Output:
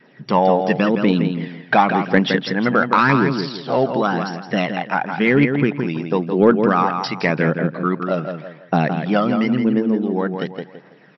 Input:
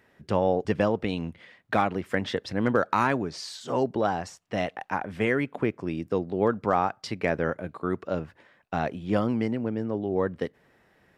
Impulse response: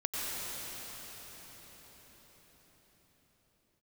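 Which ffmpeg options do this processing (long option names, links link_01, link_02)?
-filter_complex "[0:a]aphaser=in_gain=1:out_gain=1:delay=1.6:decay=0.49:speed=0.92:type=triangular,asplit=2[link_01][link_02];[link_02]adelay=166,lowpass=frequency=3500:poles=1,volume=-6dB,asplit=2[link_03][link_04];[link_04]adelay=166,lowpass=frequency=3500:poles=1,volume=0.28,asplit=2[link_05][link_06];[link_06]adelay=166,lowpass=frequency=3500:poles=1,volume=0.28,asplit=2[link_07][link_08];[link_08]adelay=166,lowpass=frequency=3500:poles=1,volume=0.28[link_09];[link_03][link_05][link_07][link_09]amix=inputs=4:normalize=0[link_10];[link_01][link_10]amix=inputs=2:normalize=0,asettb=1/sr,asplit=3[link_11][link_12][link_13];[link_11]atrim=end=2.984[link_14];[link_12]atrim=start=2.98:end=3.84,asetpts=PTS-STARTPTS,afade=type=in:duration=0.004:curve=qsin,afade=type=out:start_time=0.856:duration=0.004:curve=qsin,adynamicsmooth=sensitivity=7.5:basefreq=2400[link_15];[link_13]atrim=start=3.836[link_16];[link_14][link_15]acrossfade=duration=0.004:curve1=hsin:curve2=qsin[link_17];[link_17][link_16]acrossfade=duration=0.004:curve1=qsin:curve2=hsin,adynamicequalizer=threshold=0.0141:dfrequency=640:dqfactor=0.92:tfrequency=640:tqfactor=0.92:attack=5:release=100:ratio=0.375:range=3.5:mode=cutabove:tftype=bell,afftfilt=real='re*between(b*sr/4096,120,5700)':imag='im*between(b*sr/4096,120,5700)':win_size=4096:overlap=0.75,acontrast=88,volume=2.5dB"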